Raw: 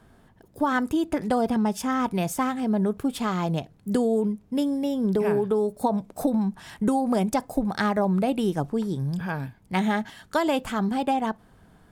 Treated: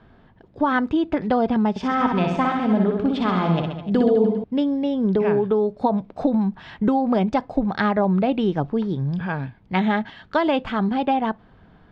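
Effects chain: LPF 3900 Hz 24 dB/oct; 1.7–4.44 reverse bouncing-ball echo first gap 60 ms, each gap 1.15×, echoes 5; gain +3.5 dB

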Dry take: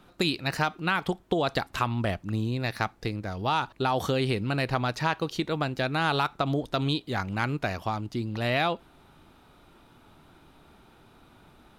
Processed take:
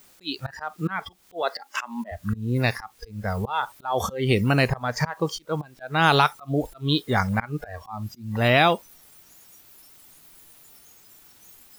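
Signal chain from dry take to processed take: in parallel at -6 dB: requantised 6-bit, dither triangular; 1.42–2.12 on the sum: steep high-pass 230 Hz 36 dB/oct; auto swell 0.242 s; spectral noise reduction 18 dB; gain +4.5 dB

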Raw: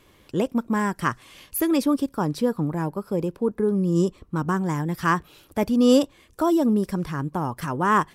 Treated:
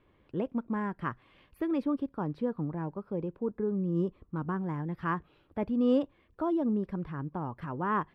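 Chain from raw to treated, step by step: air absorption 470 m; gain -8 dB

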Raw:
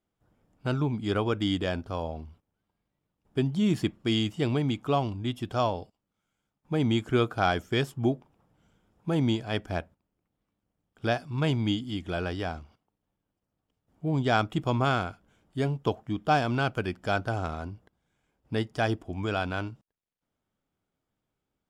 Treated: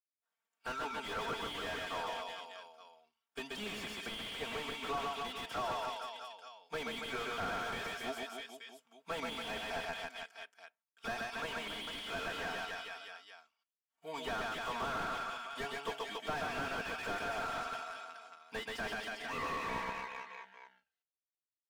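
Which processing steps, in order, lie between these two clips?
tape stop at the end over 2.95 s; expander -56 dBFS; HPF 1400 Hz 12 dB/oct; comb 4.4 ms, depth 96%; compressor 10:1, threshold -32 dBFS, peak gain reduction 9.5 dB; reverse bouncing-ball echo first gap 0.13 s, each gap 1.15×, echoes 5; slew limiter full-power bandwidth 13 Hz; gain +4 dB

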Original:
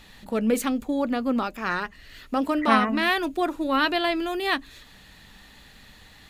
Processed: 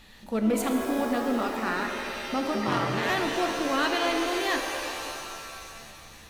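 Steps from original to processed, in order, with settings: soft clip -15.5 dBFS, distortion -15 dB; 2.54–3.1 ring modulator 90 Hz; shimmer reverb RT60 2.6 s, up +7 st, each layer -2 dB, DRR 4 dB; gain -3 dB

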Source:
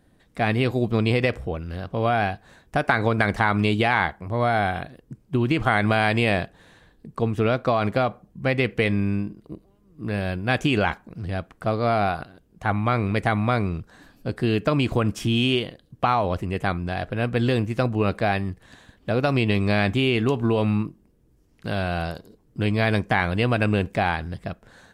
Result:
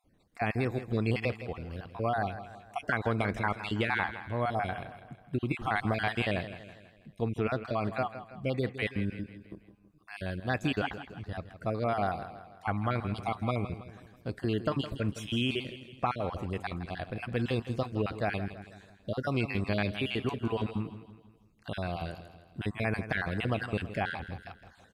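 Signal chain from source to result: random spectral dropouts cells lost 35%; feedback echo 0.163 s, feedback 48%, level -12.5 dB; gain -8 dB

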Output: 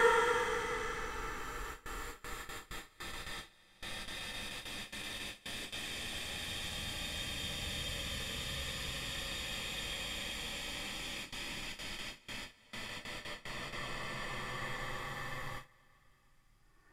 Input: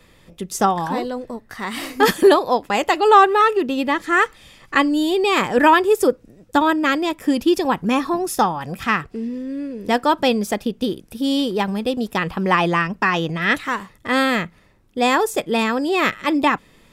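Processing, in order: notches 50/100/150 Hz; Paulstretch 40×, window 0.10 s, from 4.27; gate with hold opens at -37 dBFS; gain +5 dB

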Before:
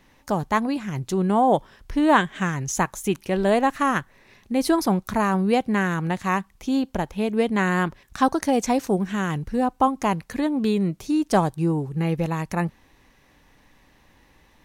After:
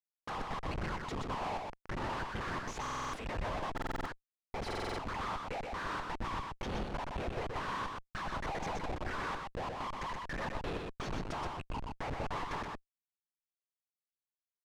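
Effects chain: gate with hold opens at -44 dBFS; reverb removal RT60 1.4 s; in parallel at -1 dB: limiter -15 dBFS, peak gain reduction 9.5 dB; on the sum: compressor 5:1, threshold -24 dBFS, peak gain reduction 13 dB; ladder high-pass 910 Hz, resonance 55%; one-sided clip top -37 dBFS; whisperiser; Schmitt trigger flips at -48 dBFS; tape spacing loss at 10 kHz 21 dB; on a send: echo 0.124 s -3.5 dB; on the sum: stuck buffer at 2.81/3.73/4.66, samples 2048, times 6; gain +6 dB

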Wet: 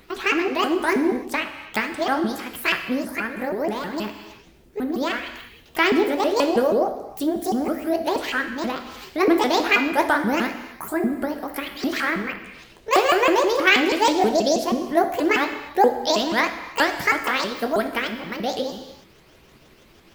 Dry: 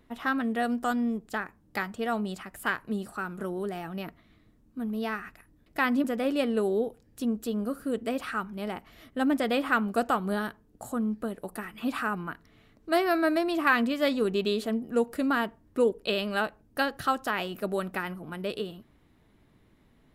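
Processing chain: repeated pitch sweeps +10 st, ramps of 0.16 s; non-linear reverb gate 0.35 s falling, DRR 6 dB; mismatched tape noise reduction encoder only; gain +7.5 dB

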